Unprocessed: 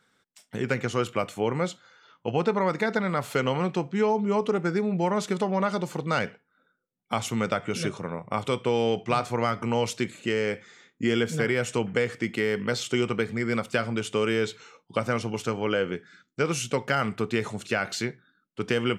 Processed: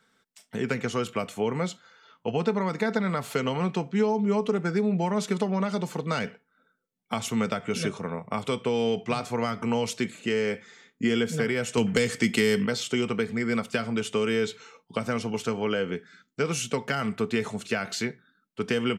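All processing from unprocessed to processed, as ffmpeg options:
-filter_complex "[0:a]asettb=1/sr,asplit=3[s0][s1][s2];[s0]atrim=end=11.774[s3];[s1]atrim=start=11.77:end=12.66,asetpts=PTS-STARTPTS,afade=t=in:d=0.004:c=qsin,afade=t=out:st=0.886:d=0.004:c=qsin,equalizer=f=9400:t=o:w=2.2:g=8.5,acontrast=47,asoftclip=type=hard:threshold=0.422[s4];[s2]atrim=start=12.656[s5];[s3][s4]acrossfade=d=0.004:c1=hsin:c2=qsin[s6];[s6][s5]acrossfade=d=0.004:c1=qsin:c2=hsin,acrossover=split=290|3000[s7][s8][s9];[s8]acompressor=threshold=0.0501:ratio=6[s10];[s7][s10][s9]amix=inputs=3:normalize=0,aecho=1:1:4.5:0.35"

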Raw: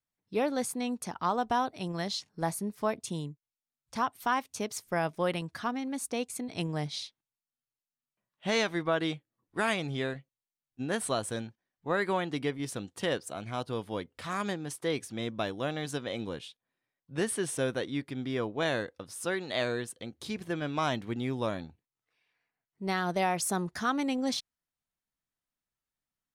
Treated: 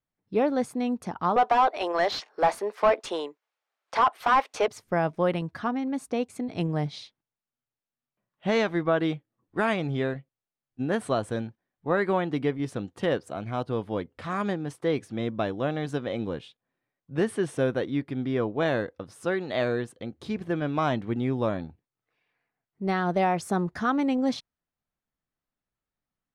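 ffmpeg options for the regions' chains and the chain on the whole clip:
-filter_complex "[0:a]asettb=1/sr,asplit=3[s0][s1][s2];[s0]atrim=end=1.364[s3];[s1]atrim=start=1.36:end=4.68,asetpts=PTS-STARTPTS,afade=t=in:d=0.004:c=qsin,afade=t=out:st=3.316:d=0.004:c=qsin,highpass=f=420:w=0.5412,highpass=f=420:w=1.3066,asplit=2[s4][s5];[s5]highpass=f=720:p=1,volume=12.6,asoftclip=type=tanh:threshold=0.168[s6];[s4][s6]amix=inputs=2:normalize=0,lowpass=f=2900:p=1,volume=0.501[s7];[s2]atrim=start=4.676[s8];[s3][s7]acrossfade=d=0.004:c1=hsin:c2=qsin[s9];[s9][s8]acrossfade=d=0.004:c1=qsin:c2=hsin,lowpass=f=1300:p=1,bandreject=f=960:w=27,volume=2"

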